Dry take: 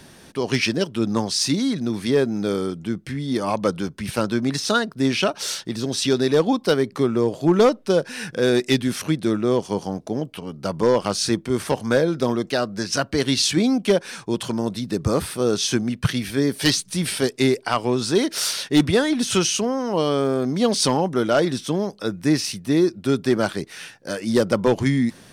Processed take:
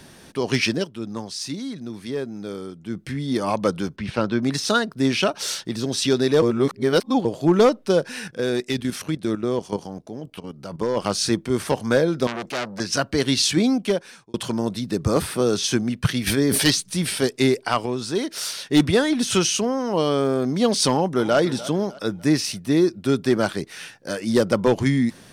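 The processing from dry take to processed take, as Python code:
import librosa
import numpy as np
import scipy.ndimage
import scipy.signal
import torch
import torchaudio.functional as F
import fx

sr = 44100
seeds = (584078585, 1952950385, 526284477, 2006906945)

y = fx.lowpass(x, sr, hz=3900.0, slope=12, at=(3.96, 4.43))
y = fx.level_steps(y, sr, step_db=11, at=(8.19, 10.97))
y = fx.transformer_sat(y, sr, knee_hz=2700.0, at=(12.27, 12.8))
y = fx.band_squash(y, sr, depth_pct=70, at=(15.16, 15.64))
y = fx.sustainer(y, sr, db_per_s=21.0, at=(16.26, 16.69), fade=0.02)
y = fx.echo_throw(y, sr, start_s=20.89, length_s=0.49, ms=300, feedback_pct=40, wet_db=-16.0)
y = fx.edit(y, sr, fx.fade_down_up(start_s=0.74, length_s=2.27, db=-9.0, fade_s=0.17),
    fx.reverse_span(start_s=6.42, length_s=0.83),
    fx.fade_out_span(start_s=13.69, length_s=0.65),
    fx.clip_gain(start_s=17.86, length_s=0.83, db=-5.0), tone=tone)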